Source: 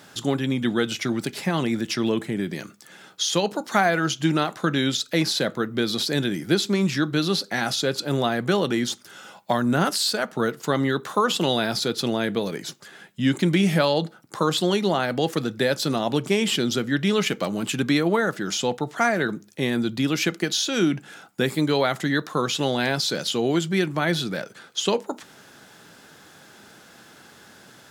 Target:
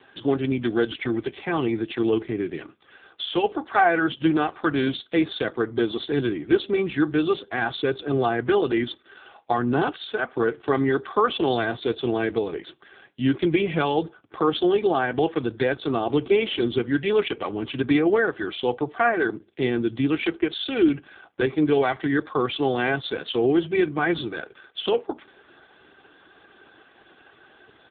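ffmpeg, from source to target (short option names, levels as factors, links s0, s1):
-af "aecho=1:1:2.6:0.73" -ar 8000 -c:a libopencore_amrnb -b:a 5150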